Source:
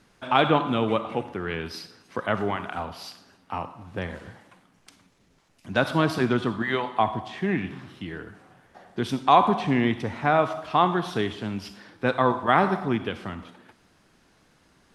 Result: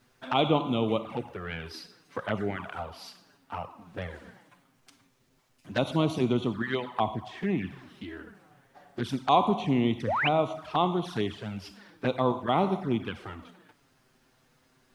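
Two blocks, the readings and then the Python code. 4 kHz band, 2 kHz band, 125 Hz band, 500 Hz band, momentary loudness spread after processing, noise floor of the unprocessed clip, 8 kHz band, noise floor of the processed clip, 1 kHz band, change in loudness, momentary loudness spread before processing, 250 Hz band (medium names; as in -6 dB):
-2.5 dB, -6.5 dB, -2.5 dB, -3.5 dB, 17 LU, -62 dBFS, no reading, -67 dBFS, -6.0 dB, -4.0 dB, 17 LU, -2.5 dB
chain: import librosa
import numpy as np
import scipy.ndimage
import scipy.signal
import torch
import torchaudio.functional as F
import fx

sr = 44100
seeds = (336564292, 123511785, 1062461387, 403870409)

y = fx.env_flanger(x, sr, rest_ms=8.2, full_db=-20.5)
y = fx.quant_dither(y, sr, seeds[0], bits=12, dither='none')
y = fx.spec_paint(y, sr, seeds[1], shape='rise', start_s=10.07, length_s=0.22, low_hz=460.0, high_hz=3300.0, level_db=-25.0)
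y = F.gain(torch.from_numpy(y), -2.0).numpy()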